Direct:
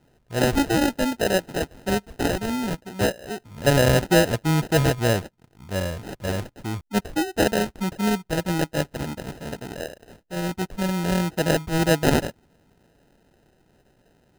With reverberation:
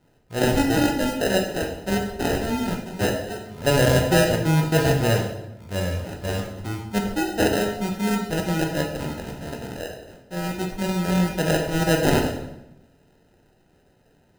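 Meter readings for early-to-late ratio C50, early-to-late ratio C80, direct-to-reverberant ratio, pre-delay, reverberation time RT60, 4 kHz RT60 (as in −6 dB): 5.5 dB, 8.5 dB, 1.0 dB, 9 ms, 0.90 s, 0.70 s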